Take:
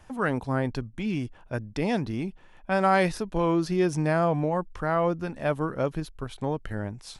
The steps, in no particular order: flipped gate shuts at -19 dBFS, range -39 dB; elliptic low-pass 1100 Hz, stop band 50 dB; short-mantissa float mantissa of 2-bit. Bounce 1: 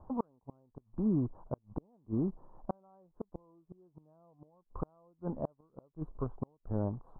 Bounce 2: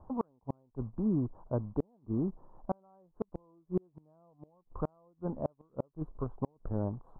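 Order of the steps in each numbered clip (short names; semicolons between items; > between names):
flipped gate > short-mantissa float > elliptic low-pass; short-mantissa float > elliptic low-pass > flipped gate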